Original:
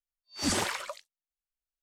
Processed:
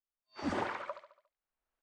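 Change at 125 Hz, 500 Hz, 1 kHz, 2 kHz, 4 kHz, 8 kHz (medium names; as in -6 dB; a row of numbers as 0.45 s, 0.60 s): -7.5 dB, -2.0 dB, -2.0 dB, -6.5 dB, -16.5 dB, -26.0 dB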